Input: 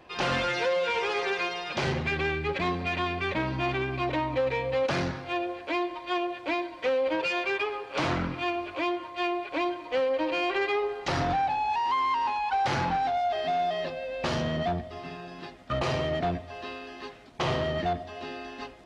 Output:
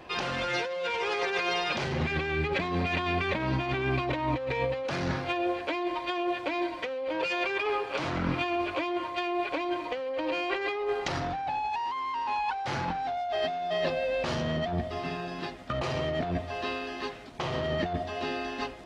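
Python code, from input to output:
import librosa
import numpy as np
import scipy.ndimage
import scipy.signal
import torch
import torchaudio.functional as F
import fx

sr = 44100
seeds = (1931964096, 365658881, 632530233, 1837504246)

y = fx.over_compress(x, sr, threshold_db=-32.0, ratio=-1.0)
y = y * 10.0 ** (2.0 / 20.0)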